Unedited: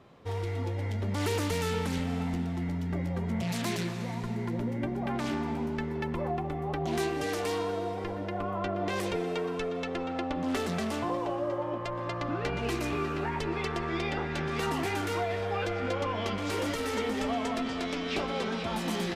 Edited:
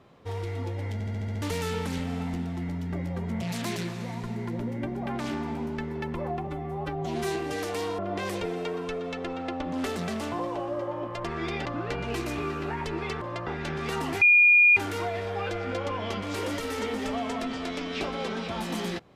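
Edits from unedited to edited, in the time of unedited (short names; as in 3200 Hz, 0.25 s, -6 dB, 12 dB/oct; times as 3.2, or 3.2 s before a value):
0.93 stutter in place 0.07 s, 7 plays
6.47–7.06 stretch 1.5×
7.69–8.69 cut
11.95–12.2 swap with 13.76–14.17
14.92 add tone 2430 Hz -14 dBFS 0.55 s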